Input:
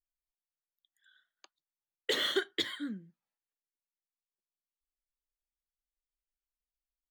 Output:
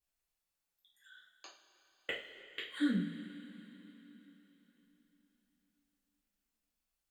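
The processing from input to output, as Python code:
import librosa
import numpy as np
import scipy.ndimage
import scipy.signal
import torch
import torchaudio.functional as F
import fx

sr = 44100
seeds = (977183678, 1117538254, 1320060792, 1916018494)

y = fx.gate_flip(x, sr, shuts_db=-25.0, range_db=-41)
y = fx.wow_flutter(y, sr, seeds[0], rate_hz=2.1, depth_cents=19.0)
y = fx.rev_double_slope(y, sr, seeds[1], early_s=0.38, late_s=4.0, knee_db=-18, drr_db=-7.5)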